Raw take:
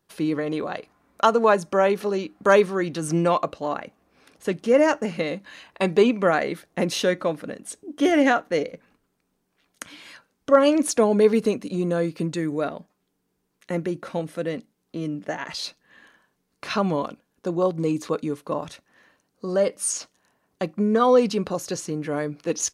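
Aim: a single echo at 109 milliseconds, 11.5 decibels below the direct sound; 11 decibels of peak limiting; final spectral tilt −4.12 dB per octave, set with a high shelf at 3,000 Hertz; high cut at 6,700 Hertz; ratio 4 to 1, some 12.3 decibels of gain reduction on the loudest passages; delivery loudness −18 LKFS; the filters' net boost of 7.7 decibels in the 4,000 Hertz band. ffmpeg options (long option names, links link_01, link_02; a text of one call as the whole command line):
ffmpeg -i in.wav -af "lowpass=6700,highshelf=frequency=3000:gain=5.5,equalizer=frequency=4000:width_type=o:gain=6,acompressor=threshold=-26dB:ratio=4,alimiter=limit=-22dB:level=0:latency=1,aecho=1:1:109:0.266,volume=14.5dB" out.wav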